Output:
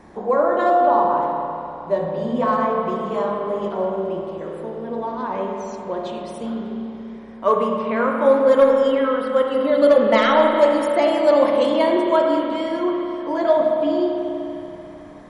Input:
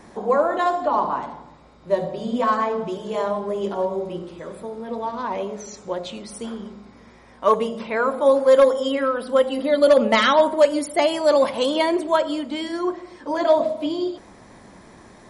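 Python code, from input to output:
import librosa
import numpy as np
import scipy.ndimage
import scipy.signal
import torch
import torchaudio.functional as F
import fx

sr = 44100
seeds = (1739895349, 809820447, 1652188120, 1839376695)

y = fx.high_shelf(x, sr, hz=3000.0, db=-9.5)
y = fx.rev_spring(y, sr, rt60_s=3.1, pass_ms=(31, 48), chirp_ms=35, drr_db=0.5)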